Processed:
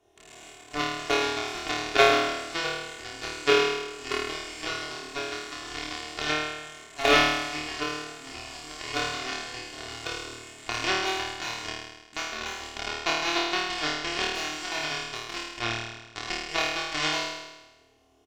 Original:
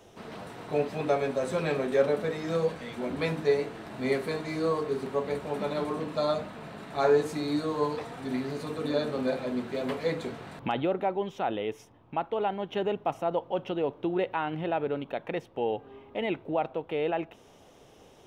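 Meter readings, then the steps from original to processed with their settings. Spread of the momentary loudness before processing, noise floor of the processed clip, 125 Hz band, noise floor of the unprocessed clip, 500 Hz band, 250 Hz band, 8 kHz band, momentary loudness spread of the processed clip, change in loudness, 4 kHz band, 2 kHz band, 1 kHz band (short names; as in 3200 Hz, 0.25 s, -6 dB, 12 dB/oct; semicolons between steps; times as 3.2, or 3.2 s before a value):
9 LU, -53 dBFS, -6.0 dB, -56 dBFS, -3.5 dB, -4.5 dB, n/a, 16 LU, +2.5 dB, +14.5 dB, +11.0 dB, +3.0 dB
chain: rattling part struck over -46 dBFS, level -20 dBFS; added harmonics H 3 -9 dB, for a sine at -10.5 dBFS; comb 2.8 ms, depth 73%; flutter echo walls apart 4.5 m, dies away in 1.1 s; gain +7.5 dB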